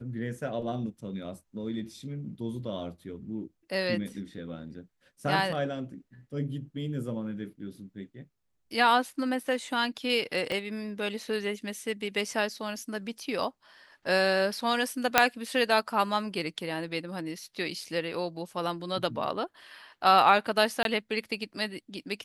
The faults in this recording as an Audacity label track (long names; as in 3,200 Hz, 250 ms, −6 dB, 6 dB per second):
10.520000	10.520000	click −20 dBFS
15.180000	15.180000	click −2 dBFS
20.830000	20.850000	drop-out 22 ms